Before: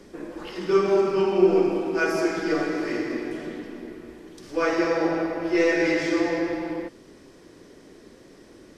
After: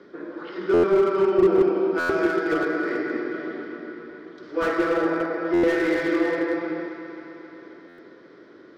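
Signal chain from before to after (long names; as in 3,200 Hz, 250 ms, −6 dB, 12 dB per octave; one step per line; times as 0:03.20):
loudspeaker in its box 190–3,900 Hz, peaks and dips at 220 Hz −4 dB, 390 Hz +3 dB, 800 Hz −5 dB, 1,400 Hz +9 dB, 2,700 Hz −10 dB
on a send: delay that swaps between a low-pass and a high-pass 133 ms, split 1,200 Hz, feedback 81%, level −9.5 dB
on the sum: buffer that repeats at 0:00.73/0:01.99/0:05.53/0:07.88, samples 512, times 8
slew-rate limiting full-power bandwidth 90 Hz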